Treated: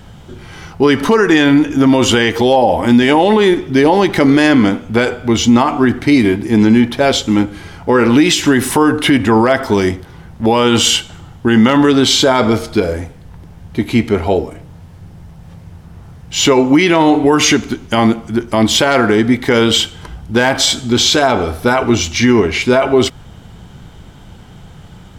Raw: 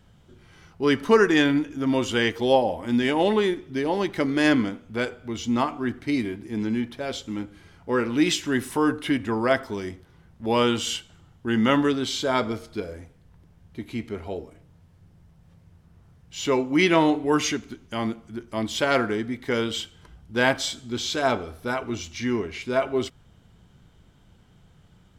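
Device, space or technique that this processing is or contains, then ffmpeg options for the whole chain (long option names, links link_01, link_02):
mastering chain: -af "equalizer=frequency=820:width_type=o:width=0.35:gain=4,acompressor=threshold=-22dB:ratio=2.5,asoftclip=type=hard:threshold=-13.5dB,alimiter=level_in=19.5dB:limit=-1dB:release=50:level=0:latency=1,volume=-1dB"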